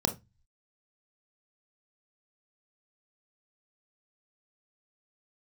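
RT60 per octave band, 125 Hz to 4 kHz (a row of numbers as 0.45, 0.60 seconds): 0.60, 0.30, 0.20, 0.20, 0.20, 0.20 seconds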